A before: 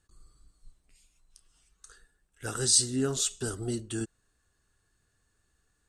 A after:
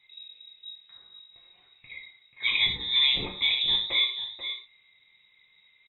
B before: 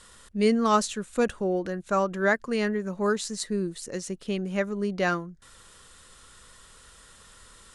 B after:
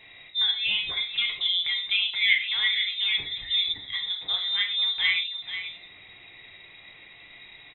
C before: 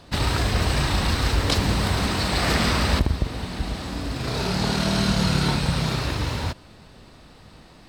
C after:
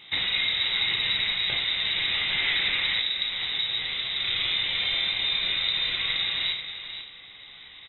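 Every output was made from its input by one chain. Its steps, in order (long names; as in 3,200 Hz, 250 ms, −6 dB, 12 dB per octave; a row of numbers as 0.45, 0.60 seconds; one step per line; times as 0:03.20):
dynamic equaliser 2,900 Hz, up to −4 dB, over −42 dBFS, Q 1.6
downward compressor, threshold −24 dBFS
on a send: single-tap delay 486 ms −10 dB
on the sum: voice inversion scrambler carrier 3,800 Hz
parametric band 2,100 Hz +13.5 dB 0.25 octaves
reverb whose tail is shaped and stops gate 150 ms falling, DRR 0.5 dB
loudness normalisation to −24 LKFS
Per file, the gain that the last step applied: +4.0, −1.5, −3.0 decibels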